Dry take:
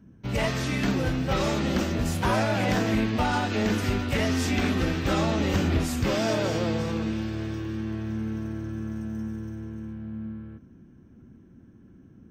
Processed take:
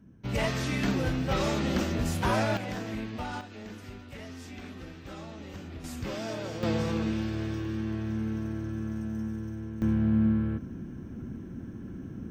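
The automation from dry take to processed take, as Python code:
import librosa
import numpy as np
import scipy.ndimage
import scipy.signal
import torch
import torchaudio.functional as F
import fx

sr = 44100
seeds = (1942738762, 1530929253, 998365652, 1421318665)

y = fx.gain(x, sr, db=fx.steps((0.0, -2.5), (2.57, -11.0), (3.41, -18.0), (5.84, -10.0), (6.63, -1.0), (9.82, 11.5)))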